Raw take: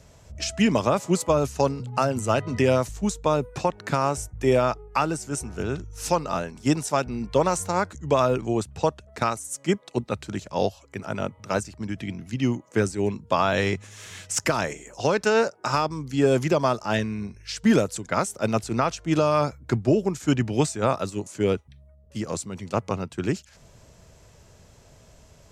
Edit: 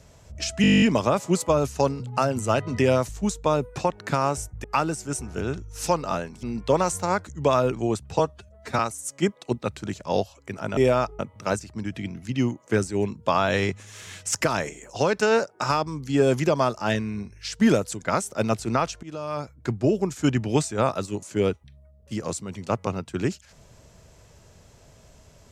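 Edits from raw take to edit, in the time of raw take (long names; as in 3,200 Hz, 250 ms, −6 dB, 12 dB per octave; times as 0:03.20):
0:00.62: stutter 0.02 s, 11 plays
0:04.44–0:04.86: move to 0:11.23
0:06.65–0:07.09: remove
0:08.85–0:09.25: time-stretch 1.5×
0:19.07–0:20.06: fade in, from −21 dB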